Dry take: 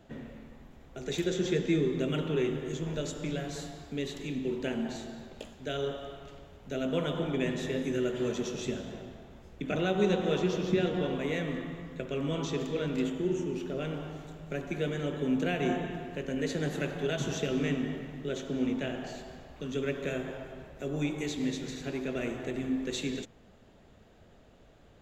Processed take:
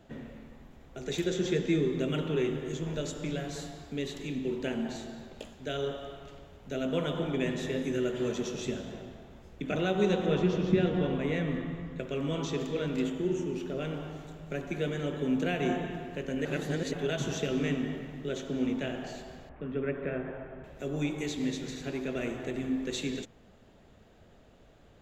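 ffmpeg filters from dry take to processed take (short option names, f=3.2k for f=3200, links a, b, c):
-filter_complex "[0:a]asettb=1/sr,asplit=3[a][b][c];[a]atrim=end=10.264[d];[b]atrim=start=10.26:end=11.99,asetpts=PTS-STARTPTS,afade=t=in:d=0.004:c=qsin,afade=t=out:st=1.726:d=0.004:c=qsin,bass=f=250:g=5,treble=f=4k:g=-7[e];[c]atrim=start=11.986[f];[d][e]acrossfade=d=0.004:c1=hsin:c2=qsin[g];[g][f]acrossfade=d=0.004:c1=qsin:c2=hsin,asettb=1/sr,asplit=3[h][i][j];[h]atrim=end=19.494[k];[i]atrim=start=19.49:end=20.64,asetpts=PTS-STARTPTS,afade=t=in:d=0.004:c=qsin,afade=t=out:st=1.146:d=0.004:c=qsin,lowpass=f=2.2k:w=0.5412,lowpass=f=2.2k:w=1.3066[l];[j]atrim=start=20.636[m];[k][l]acrossfade=d=0.004:c1=hsin:c2=qsin[n];[n][m]acrossfade=d=0.004:c1=qsin:c2=hsin,asplit=3[o][p][q];[o]atrim=end=16.452[r];[p]atrim=start=16.448:end=16.932,asetpts=PTS-STARTPTS,areverse[s];[q]atrim=start=16.928[t];[r][s]acrossfade=d=0.004:c1=hsin:c2=hsin[u];[u][t]acrossfade=d=0.004:c1=hsin:c2=hsin"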